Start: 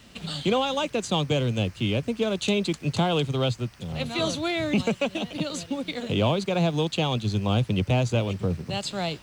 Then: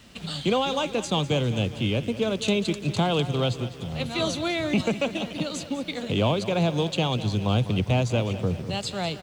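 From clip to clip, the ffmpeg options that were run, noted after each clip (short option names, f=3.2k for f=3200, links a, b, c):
-af "aecho=1:1:201|402|603|804|1005|1206:0.2|0.114|0.0648|0.037|0.0211|0.012"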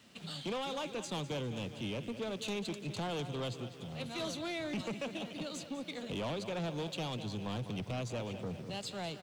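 -af "highpass=130,asoftclip=type=tanh:threshold=-24dB,volume=-9dB"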